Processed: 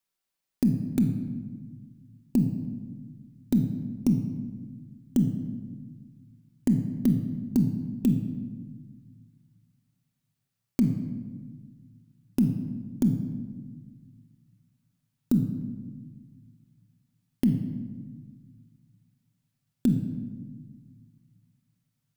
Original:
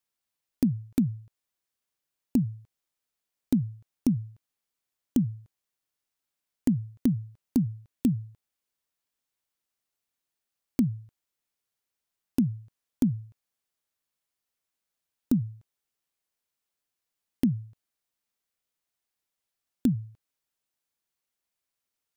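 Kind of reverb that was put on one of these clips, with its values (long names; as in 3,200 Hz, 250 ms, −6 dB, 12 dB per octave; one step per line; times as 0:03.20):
rectangular room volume 1,300 cubic metres, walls mixed, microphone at 1.1 metres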